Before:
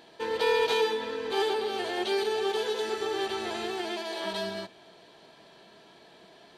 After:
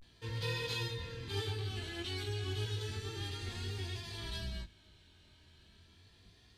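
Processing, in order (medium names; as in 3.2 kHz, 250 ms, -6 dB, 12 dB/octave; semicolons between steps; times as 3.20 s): octave divider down 2 oct, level +3 dB; amplifier tone stack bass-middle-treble 6-0-2; vibrato 0.34 Hz 91 cents; chorus 0.45 Hz, delay 17 ms, depth 6.7 ms; trim +12 dB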